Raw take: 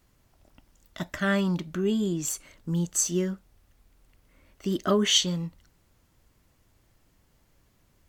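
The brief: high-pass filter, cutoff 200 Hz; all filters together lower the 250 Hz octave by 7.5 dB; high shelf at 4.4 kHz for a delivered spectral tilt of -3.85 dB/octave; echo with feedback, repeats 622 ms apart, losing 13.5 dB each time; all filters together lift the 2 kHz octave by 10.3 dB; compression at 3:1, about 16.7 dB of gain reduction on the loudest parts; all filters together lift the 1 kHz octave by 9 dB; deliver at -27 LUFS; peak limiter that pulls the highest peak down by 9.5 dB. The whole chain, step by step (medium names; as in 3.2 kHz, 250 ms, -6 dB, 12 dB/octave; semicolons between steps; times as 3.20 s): high-pass 200 Hz; peaking EQ 250 Hz -8 dB; peaking EQ 1 kHz +8 dB; peaking EQ 2 kHz +9 dB; treble shelf 4.4 kHz +7 dB; compression 3:1, threshold -35 dBFS; peak limiter -27.5 dBFS; feedback delay 622 ms, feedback 21%, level -13.5 dB; trim +12.5 dB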